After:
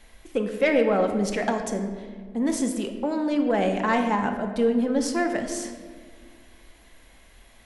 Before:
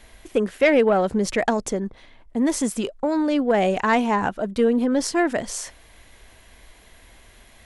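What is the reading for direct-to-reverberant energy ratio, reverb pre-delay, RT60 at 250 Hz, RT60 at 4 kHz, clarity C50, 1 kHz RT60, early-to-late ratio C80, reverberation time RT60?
4.0 dB, 4 ms, 2.4 s, 0.90 s, 7.0 dB, 1.5 s, 8.5 dB, 1.8 s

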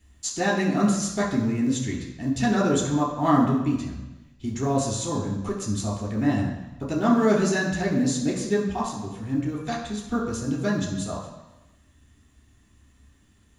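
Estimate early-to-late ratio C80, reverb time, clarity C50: 6.5 dB, 1.0 s, 4.5 dB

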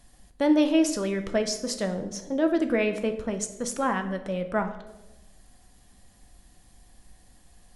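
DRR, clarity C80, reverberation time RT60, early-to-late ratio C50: 6.5 dB, 13.0 dB, 1.0 s, 11.0 dB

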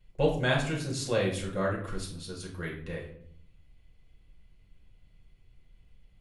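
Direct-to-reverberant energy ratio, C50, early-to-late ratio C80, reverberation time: -2.5 dB, 6.5 dB, 10.5 dB, 0.60 s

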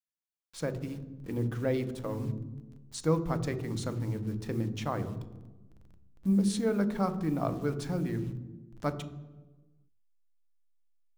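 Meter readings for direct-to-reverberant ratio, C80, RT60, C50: 10.0 dB, 15.5 dB, 1.3 s, 13.0 dB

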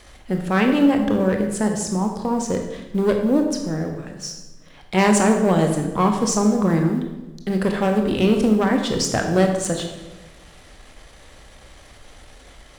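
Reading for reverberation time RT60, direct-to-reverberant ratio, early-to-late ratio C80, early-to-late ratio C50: 1.1 s, 3.5 dB, 7.5 dB, 6.0 dB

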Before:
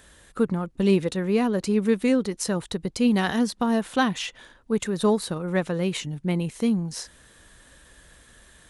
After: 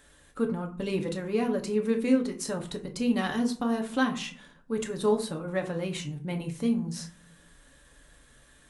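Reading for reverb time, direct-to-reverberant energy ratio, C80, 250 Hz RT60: 0.45 s, 2.5 dB, 17.0 dB, 0.80 s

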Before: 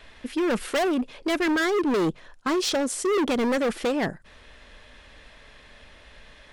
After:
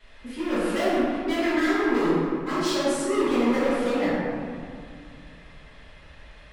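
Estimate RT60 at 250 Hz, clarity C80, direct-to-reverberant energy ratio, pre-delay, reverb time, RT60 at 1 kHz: 3.0 s, -1.5 dB, -13.5 dB, 4 ms, 2.2 s, 2.2 s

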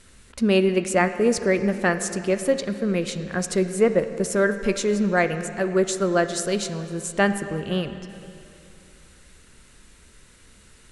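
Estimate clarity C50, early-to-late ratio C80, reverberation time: 10.5 dB, 11.0 dB, 2.8 s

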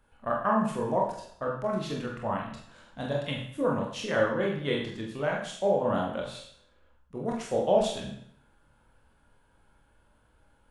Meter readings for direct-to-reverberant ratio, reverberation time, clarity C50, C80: -2.0 dB, 0.65 s, 5.0 dB, 7.5 dB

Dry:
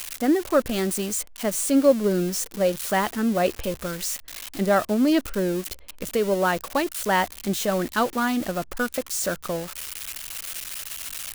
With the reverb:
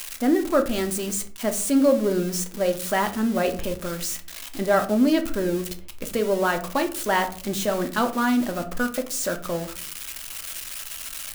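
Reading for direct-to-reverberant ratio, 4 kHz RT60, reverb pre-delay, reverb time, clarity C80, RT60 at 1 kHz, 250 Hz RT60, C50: 6.0 dB, 0.25 s, 3 ms, 0.50 s, 18.5 dB, 0.40 s, 0.75 s, 13.5 dB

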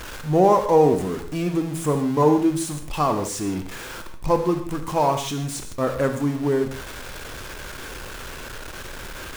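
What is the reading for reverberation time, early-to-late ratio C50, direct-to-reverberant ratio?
no single decay rate, 8.5 dB, 6.5 dB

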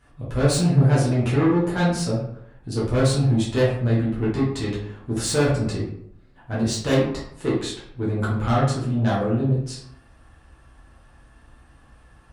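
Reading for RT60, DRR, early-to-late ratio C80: 0.75 s, -8.5 dB, 7.0 dB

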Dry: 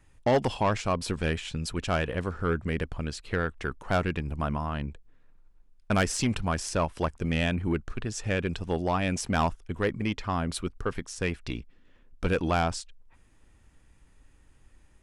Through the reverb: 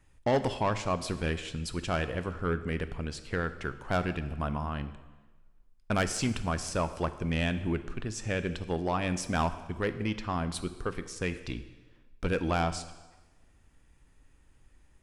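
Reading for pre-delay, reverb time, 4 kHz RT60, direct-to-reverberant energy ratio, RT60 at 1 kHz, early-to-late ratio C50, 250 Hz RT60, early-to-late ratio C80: 6 ms, 1.2 s, 1.1 s, 11.0 dB, 1.2 s, 13.0 dB, 1.2 s, 14.5 dB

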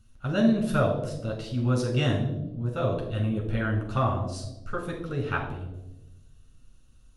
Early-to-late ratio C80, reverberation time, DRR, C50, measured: 9.0 dB, 1.0 s, -1.5 dB, 6.5 dB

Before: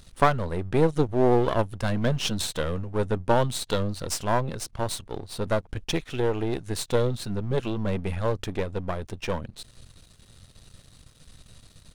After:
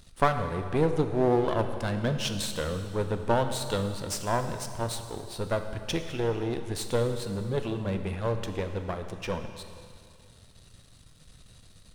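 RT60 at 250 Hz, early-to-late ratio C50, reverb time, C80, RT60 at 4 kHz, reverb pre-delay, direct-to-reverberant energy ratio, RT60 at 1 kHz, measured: 2.3 s, 8.0 dB, 2.3 s, 9.0 dB, 2.2 s, 4 ms, 6.5 dB, 2.2 s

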